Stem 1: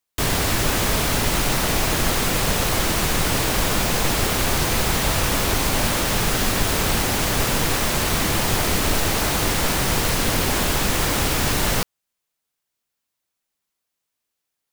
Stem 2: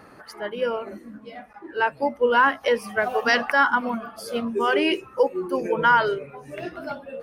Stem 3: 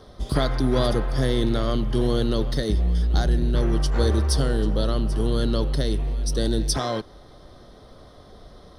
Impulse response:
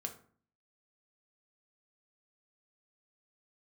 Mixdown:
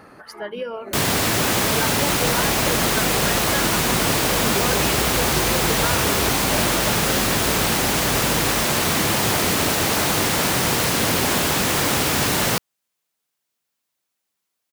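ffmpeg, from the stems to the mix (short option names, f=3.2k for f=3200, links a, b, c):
-filter_complex "[0:a]highpass=110,adelay=750,volume=2dB[a];[1:a]acompressor=threshold=-28dB:ratio=12,volume=2.5dB[b];[2:a]adelay=1900,volume=-12dB[c];[a][b][c]amix=inputs=3:normalize=0"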